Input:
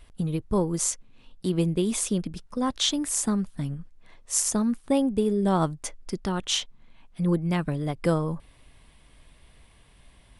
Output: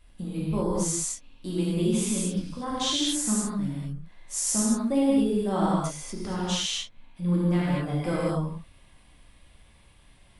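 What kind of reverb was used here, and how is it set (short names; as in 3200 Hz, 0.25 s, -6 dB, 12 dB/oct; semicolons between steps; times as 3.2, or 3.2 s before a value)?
non-linear reverb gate 0.27 s flat, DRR -8 dB; gain -9 dB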